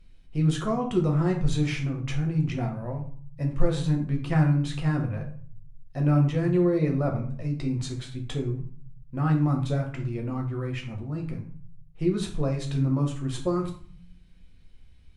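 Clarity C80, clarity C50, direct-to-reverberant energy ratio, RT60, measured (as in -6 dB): 13.0 dB, 8.5 dB, 1.0 dB, 0.50 s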